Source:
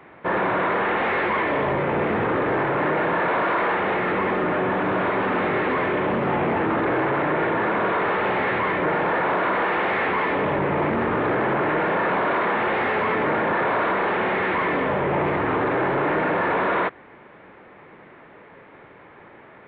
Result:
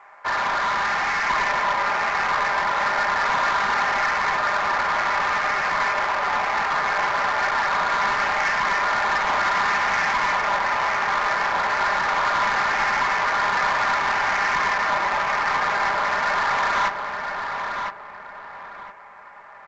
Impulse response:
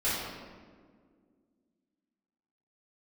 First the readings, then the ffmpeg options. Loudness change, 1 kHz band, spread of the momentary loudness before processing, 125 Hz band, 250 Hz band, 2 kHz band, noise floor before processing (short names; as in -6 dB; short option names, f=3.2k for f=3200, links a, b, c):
+1.0 dB, +3.0 dB, 1 LU, -12.5 dB, -15.0 dB, +3.5 dB, -47 dBFS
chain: -af "highpass=f=830:w=0.5412,highpass=f=830:w=1.3066,asoftclip=type=tanh:threshold=-24dB,aecho=1:1:5:0.52,volume=25dB,asoftclip=hard,volume=-25dB,aecho=1:1:1009|2018|3027|4036:0.562|0.186|0.0612|0.0202,adynamicsmooth=sensitivity=2.5:basefreq=1.3k,volume=6.5dB" -ar 16000 -c:a pcm_alaw